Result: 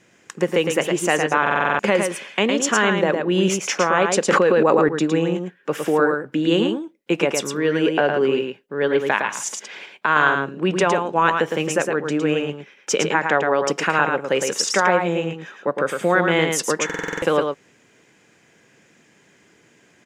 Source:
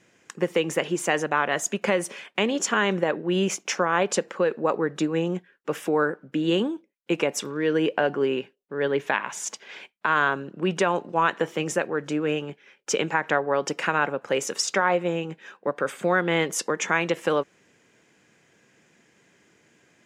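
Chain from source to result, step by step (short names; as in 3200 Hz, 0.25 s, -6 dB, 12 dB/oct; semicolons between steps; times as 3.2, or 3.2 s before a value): echo 0.11 s -5 dB; stuck buffer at 1.42/16.85, samples 2048, times 7; 4.28–4.89 fast leveller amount 100%; gain +4 dB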